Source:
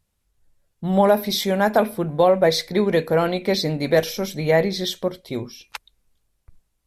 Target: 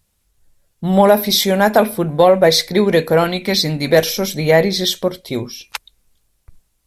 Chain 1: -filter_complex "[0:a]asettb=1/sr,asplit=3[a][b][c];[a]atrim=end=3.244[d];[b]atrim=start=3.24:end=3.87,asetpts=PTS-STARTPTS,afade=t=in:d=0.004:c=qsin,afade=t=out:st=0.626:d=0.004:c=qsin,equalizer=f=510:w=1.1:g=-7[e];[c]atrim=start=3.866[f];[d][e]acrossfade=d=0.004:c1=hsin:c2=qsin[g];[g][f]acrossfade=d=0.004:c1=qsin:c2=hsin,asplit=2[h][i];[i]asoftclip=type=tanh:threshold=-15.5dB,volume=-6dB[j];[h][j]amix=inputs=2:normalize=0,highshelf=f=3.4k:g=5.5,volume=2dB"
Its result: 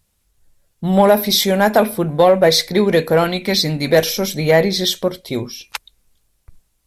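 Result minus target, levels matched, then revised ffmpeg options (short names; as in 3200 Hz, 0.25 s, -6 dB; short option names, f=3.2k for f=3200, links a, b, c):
soft clip: distortion +9 dB
-filter_complex "[0:a]asettb=1/sr,asplit=3[a][b][c];[a]atrim=end=3.244[d];[b]atrim=start=3.24:end=3.87,asetpts=PTS-STARTPTS,afade=t=in:d=0.004:c=qsin,afade=t=out:st=0.626:d=0.004:c=qsin,equalizer=f=510:w=1.1:g=-7[e];[c]atrim=start=3.866[f];[d][e]acrossfade=d=0.004:c1=hsin:c2=qsin[g];[g][f]acrossfade=d=0.004:c1=qsin:c2=hsin,asplit=2[h][i];[i]asoftclip=type=tanh:threshold=-8.5dB,volume=-6dB[j];[h][j]amix=inputs=2:normalize=0,highshelf=f=3.4k:g=5.5,volume=2dB"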